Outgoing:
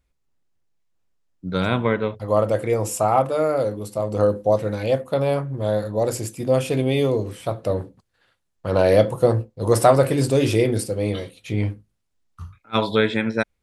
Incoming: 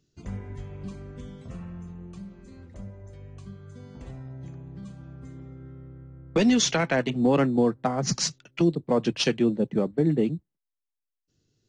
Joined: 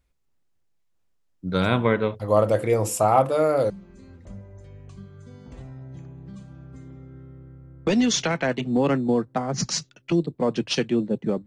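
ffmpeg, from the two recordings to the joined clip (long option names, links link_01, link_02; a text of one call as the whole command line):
ffmpeg -i cue0.wav -i cue1.wav -filter_complex "[0:a]apad=whole_dur=11.46,atrim=end=11.46,atrim=end=3.702[link_01];[1:a]atrim=start=2.188:end=9.95[link_02];[link_01][link_02]acrossfade=duration=0.004:curve1=hsin:curve2=hsin" out.wav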